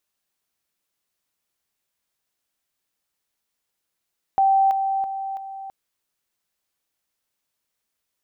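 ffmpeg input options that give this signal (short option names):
-f lavfi -i "aevalsrc='pow(10,(-14-6*floor(t/0.33))/20)*sin(2*PI*778*t)':d=1.32:s=44100"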